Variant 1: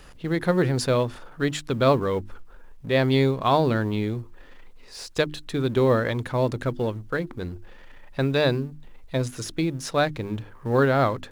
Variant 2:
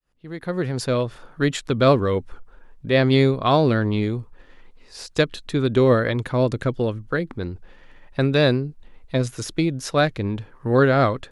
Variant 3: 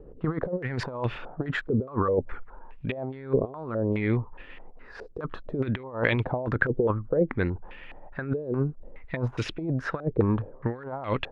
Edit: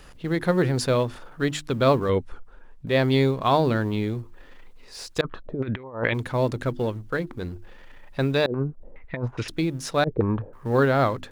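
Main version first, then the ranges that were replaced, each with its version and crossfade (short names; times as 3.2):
1
2.09–2.87 from 2
5.21–6.14 from 3
8.46–9.48 from 3
10.04–10.53 from 3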